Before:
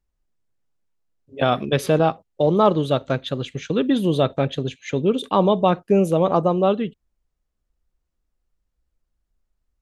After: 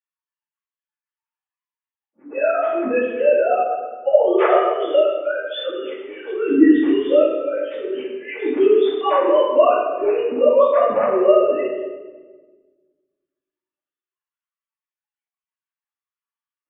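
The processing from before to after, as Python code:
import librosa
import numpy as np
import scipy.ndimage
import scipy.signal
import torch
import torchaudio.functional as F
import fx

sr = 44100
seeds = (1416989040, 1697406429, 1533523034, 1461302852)

y = fx.sine_speech(x, sr)
y = fx.stretch_vocoder_free(y, sr, factor=1.7)
y = fx.room_shoebox(y, sr, seeds[0], volume_m3=1000.0, walls='mixed', distance_m=2.4)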